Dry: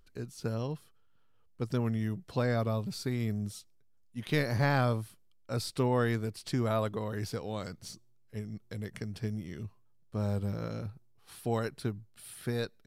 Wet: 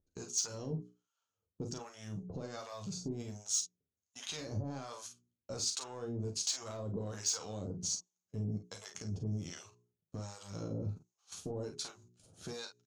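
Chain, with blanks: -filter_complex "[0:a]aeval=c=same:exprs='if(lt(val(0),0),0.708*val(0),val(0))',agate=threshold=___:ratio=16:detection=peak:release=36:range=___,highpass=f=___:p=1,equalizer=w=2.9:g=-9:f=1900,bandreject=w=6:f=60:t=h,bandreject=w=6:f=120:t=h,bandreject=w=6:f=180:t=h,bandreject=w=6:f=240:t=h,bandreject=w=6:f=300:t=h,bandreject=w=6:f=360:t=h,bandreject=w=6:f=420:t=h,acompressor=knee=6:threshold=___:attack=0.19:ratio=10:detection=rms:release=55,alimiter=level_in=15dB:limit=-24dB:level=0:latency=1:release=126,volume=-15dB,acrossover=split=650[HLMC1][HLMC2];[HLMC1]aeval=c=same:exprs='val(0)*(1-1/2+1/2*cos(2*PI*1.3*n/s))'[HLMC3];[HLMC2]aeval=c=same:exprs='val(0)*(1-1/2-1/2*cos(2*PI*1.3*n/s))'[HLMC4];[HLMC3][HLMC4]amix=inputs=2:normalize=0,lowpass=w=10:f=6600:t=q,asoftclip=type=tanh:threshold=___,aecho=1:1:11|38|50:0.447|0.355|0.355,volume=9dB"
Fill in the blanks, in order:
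-55dB, -17dB, 83, -34dB, -32dB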